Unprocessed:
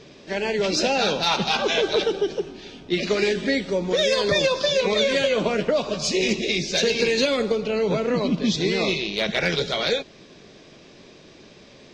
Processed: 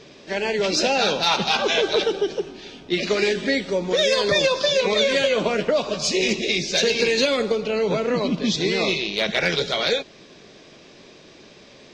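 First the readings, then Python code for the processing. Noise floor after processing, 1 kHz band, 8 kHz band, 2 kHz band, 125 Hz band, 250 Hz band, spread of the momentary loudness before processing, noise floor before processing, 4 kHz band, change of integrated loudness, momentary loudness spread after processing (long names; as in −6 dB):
−48 dBFS, +1.5 dB, +2.0 dB, +2.0 dB, −1.5 dB, −0.5 dB, 6 LU, −48 dBFS, +2.0 dB, +1.0 dB, 7 LU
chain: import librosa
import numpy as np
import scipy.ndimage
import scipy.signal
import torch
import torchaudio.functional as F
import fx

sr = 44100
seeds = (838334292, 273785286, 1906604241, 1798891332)

y = fx.low_shelf(x, sr, hz=260.0, db=-5.0)
y = y * librosa.db_to_amplitude(2.0)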